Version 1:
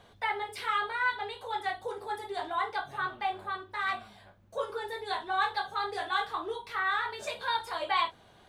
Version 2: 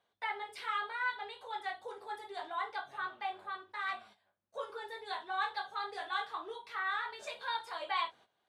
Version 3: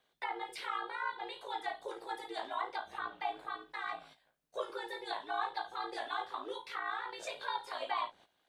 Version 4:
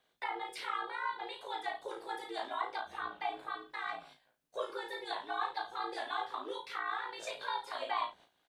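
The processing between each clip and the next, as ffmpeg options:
-af "agate=range=-14dB:threshold=-50dB:ratio=16:detection=peak,highpass=f=530:p=1,highshelf=f=11k:g=-11,volume=-5dB"
-filter_complex "[0:a]acrossover=split=1200[a][b];[a]aeval=exprs='val(0)*sin(2*PI*56*n/s)':c=same[c];[b]acompressor=threshold=-47dB:ratio=6[d];[c][d]amix=inputs=2:normalize=0,volume=5.5dB"
-filter_complex "[0:a]asplit=2[a][b];[b]adelay=35,volume=-7dB[c];[a][c]amix=inputs=2:normalize=0"

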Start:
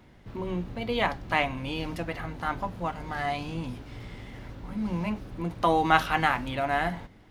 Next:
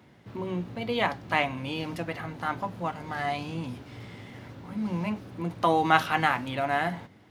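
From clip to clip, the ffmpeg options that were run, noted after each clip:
-af "highpass=f=89:w=0.5412,highpass=f=89:w=1.3066"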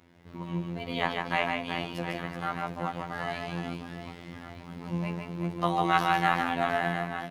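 -af "aecho=1:1:150|375|712.5|1219|1978:0.631|0.398|0.251|0.158|0.1,afftfilt=real='hypot(re,im)*cos(PI*b)':imag='0':win_size=2048:overlap=0.75"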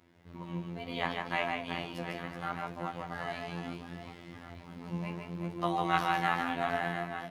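-af "flanger=delay=8.5:depth=7.8:regen=69:speed=0.71:shape=sinusoidal"

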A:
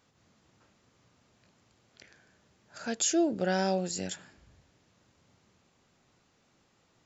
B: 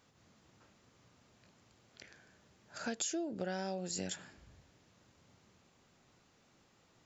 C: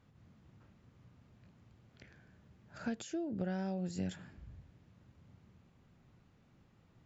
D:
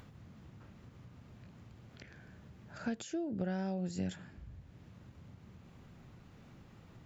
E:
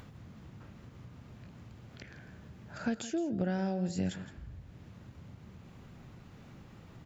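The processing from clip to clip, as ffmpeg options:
-af "acompressor=threshold=-34dB:ratio=16"
-af "bass=f=250:g=13,treble=f=4k:g=-11,volume=-3.5dB"
-af "acompressor=mode=upward:threshold=-47dB:ratio=2.5,volume=1dB"
-af "aecho=1:1:165:0.178,volume=4dB"

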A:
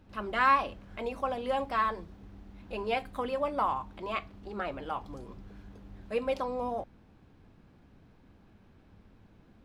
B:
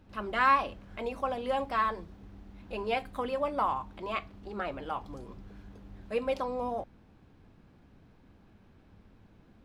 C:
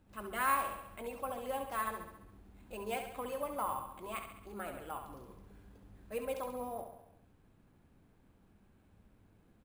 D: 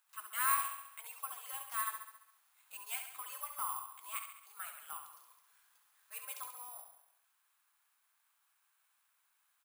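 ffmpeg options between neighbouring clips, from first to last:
-af anull
-filter_complex "[0:a]asplit=2[a][b];[b]aecho=0:1:68|136|204|272|340|408|476:0.422|0.24|0.137|0.0781|0.0445|0.0254|0.0145[c];[a][c]amix=inputs=2:normalize=0,acrusher=samples=4:mix=1:aa=0.000001,volume=-8dB"
-af "highpass=f=1.1k:t=q:w=2.3,aderivative,volume=6.5dB"

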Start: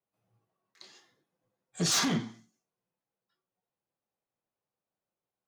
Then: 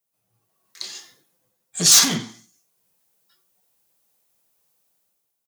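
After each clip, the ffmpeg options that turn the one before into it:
-af "aecho=1:1:91:0.0891,crystalizer=i=4.5:c=0,dynaudnorm=f=110:g=11:m=12dB,volume=-1dB"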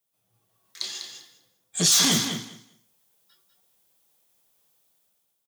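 -af "equalizer=f=3.4k:w=6.3:g=6.5,alimiter=limit=-10dB:level=0:latency=1:release=22,aecho=1:1:198|396|594:0.422|0.0675|0.0108"

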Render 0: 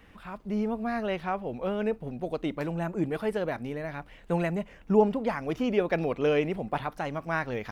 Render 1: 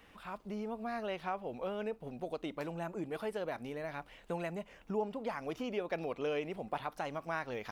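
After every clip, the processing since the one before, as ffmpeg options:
-af "equalizer=f=1.8k:t=o:w=0.86:g=-4,acompressor=threshold=-34dB:ratio=2,lowshelf=f=330:g=-10.5"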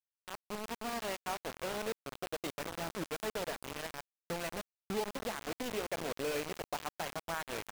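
-af "aecho=1:1:54|228|421:0.2|0.2|0.15,acrusher=bits=5:mix=0:aa=0.000001,volume=-2dB"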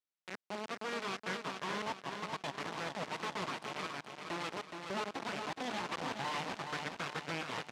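-filter_complex "[0:a]aeval=exprs='abs(val(0))':c=same,highpass=180,lowpass=5.2k,asplit=2[a][b];[b]aecho=0:1:421|842|1263|1684|2105:0.501|0.21|0.0884|0.0371|0.0156[c];[a][c]amix=inputs=2:normalize=0,volume=1dB"

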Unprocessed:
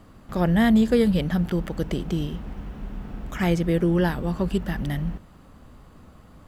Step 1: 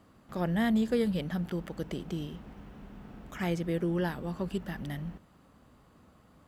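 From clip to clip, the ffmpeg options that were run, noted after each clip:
-af "highpass=f=120:p=1,volume=-8dB"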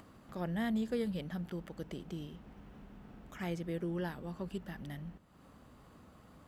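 -af "acompressor=mode=upward:threshold=-41dB:ratio=2.5,volume=-7dB"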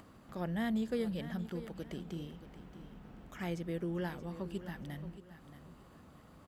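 -af "aecho=1:1:627|1254|1881:0.224|0.0694|0.0215"

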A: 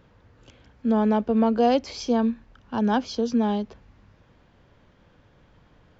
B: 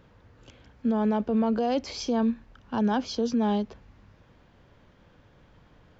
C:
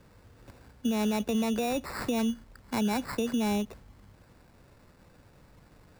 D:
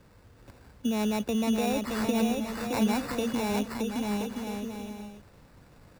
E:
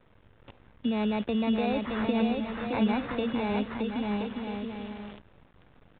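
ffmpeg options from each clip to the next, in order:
-af "alimiter=limit=-18dB:level=0:latency=1:release=16"
-filter_complex "[0:a]acrusher=samples=14:mix=1:aa=0.000001,acrossover=split=140[a][b];[b]acompressor=threshold=-26dB:ratio=6[c];[a][c]amix=inputs=2:normalize=0"
-af "aecho=1:1:620|1023|1285|1455|1566:0.631|0.398|0.251|0.158|0.1"
-af "acrusher=bits=8:dc=4:mix=0:aa=0.000001,aresample=8000,aresample=44100"

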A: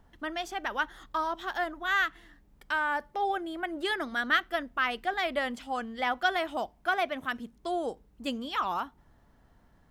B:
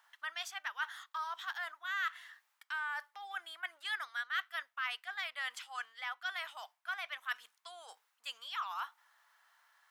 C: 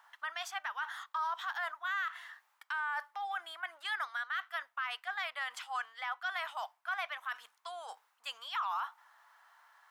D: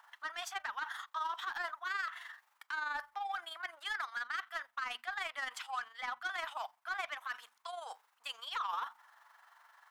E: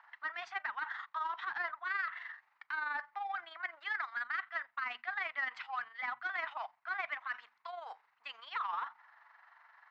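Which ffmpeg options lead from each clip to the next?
-af "areverse,acompressor=threshold=-37dB:ratio=10,areverse,highpass=f=1.1k:w=0.5412,highpass=f=1.1k:w=1.3066,volume=4.5dB"
-af "equalizer=f=890:t=o:w=1.8:g=9.5,alimiter=level_in=3.5dB:limit=-24dB:level=0:latency=1:release=36,volume=-3.5dB"
-af "asoftclip=type=tanh:threshold=-32.5dB,bandreject=f=60:t=h:w=6,bandreject=f=120:t=h:w=6,bandreject=f=180:t=h:w=6,bandreject=f=240:t=h:w=6,tremolo=f=23:d=0.519,volume=3dB"
-af "highpass=f=110:w=0.5412,highpass=f=110:w=1.3066,equalizer=f=130:t=q:w=4:g=10,equalizer=f=510:t=q:w=4:g=-5,equalizer=f=2k:t=q:w=4:g=6,equalizer=f=3.3k:t=q:w=4:g=-8,lowpass=f=3.9k:w=0.5412,lowpass=f=3.9k:w=1.3066"

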